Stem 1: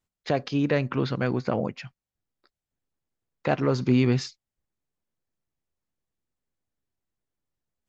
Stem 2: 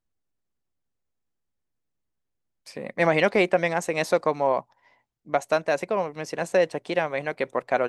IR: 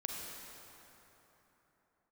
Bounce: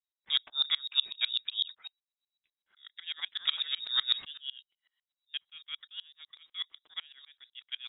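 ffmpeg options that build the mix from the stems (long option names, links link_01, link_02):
-filter_complex "[0:a]tremolo=f=3.1:d=0.64,adynamicequalizer=threshold=0.00708:dfrequency=1800:dqfactor=0.7:tfrequency=1800:tqfactor=0.7:attack=5:release=100:ratio=0.375:range=1.5:mode=cutabove:tftype=highshelf,volume=2.5dB,asplit=2[link_01][link_02];[1:a]volume=-5dB[link_03];[link_02]apad=whole_len=347662[link_04];[link_03][link_04]sidechaingate=range=-7dB:threshold=-47dB:ratio=16:detection=peak[link_05];[link_01][link_05]amix=inputs=2:normalize=0,lowpass=frequency=3300:width_type=q:width=0.5098,lowpass=frequency=3300:width_type=q:width=0.6013,lowpass=frequency=3300:width_type=q:width=0.9,lowpass=frequency=3300:width_type=q:width=2.563,afreqshift=-3900,aeval=exprs='val(0)*pow(10,-28*if(lt(mod(-8*n/s,1),2*abs(-8)/1000),1-mod(-8*n/s,1)/(2*abs(-8)/1000),(mod(-8*n/s,1)-2*abs(-8)/1000)/(1-2*abs(-8)/1000))/20)':channel_layout=same"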